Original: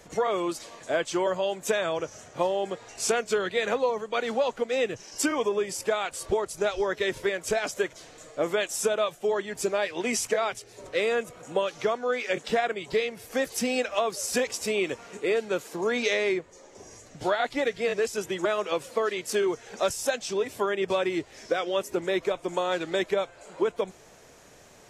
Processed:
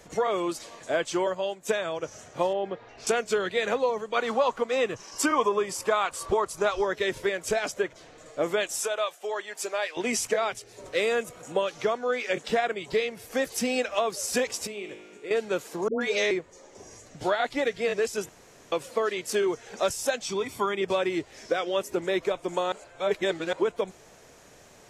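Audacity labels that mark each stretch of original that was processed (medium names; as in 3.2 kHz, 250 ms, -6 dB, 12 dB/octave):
1.250000	2.030000	upward expansion, over -43 dBFS
2.530000	3.070000	distance through air 270 m
4.160000	6.850000	peaking EQ 1.1 kHz +11 dB 0.49 oct
7.720000	8.260000	treble shelf 4.7 kHz -11 dB
8.800000	9.970000	high-pass 610 Hz
10.870000	11.520000	treble shelf 5.7 kHz +6 dB
14.670000	15.310000	feedback comb 52 Hz, decay 1.3 s, mix 80%
15.880000	16.310000	phase dispersion highs, late by 129 ms, half as late at 720 Hz
18.290000	18.720000	room tone
20.250000	20.810000	comb 0.9 ms, depth 55%
22.720000	23.530000	reverse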